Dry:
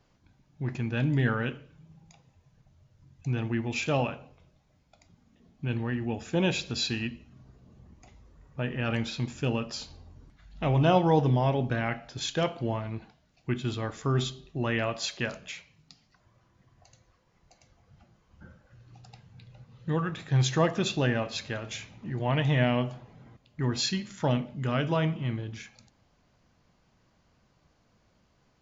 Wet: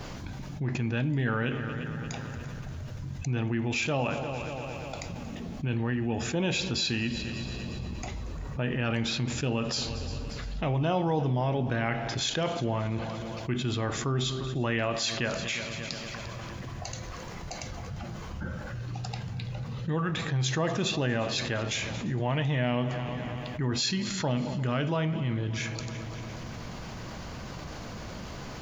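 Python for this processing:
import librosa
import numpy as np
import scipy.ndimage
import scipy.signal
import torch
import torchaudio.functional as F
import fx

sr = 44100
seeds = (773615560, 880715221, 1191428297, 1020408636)

p1 = x + fx.echo_heads(x, sr, ms=116, heads='second and third', feedback_pct=44, wet_db=-22.5, dry=0)
p2 = fx.env_flatten(p1, sr, amount_pct=70)
y = p2 * librosa.db_to_amplitude(-6.5)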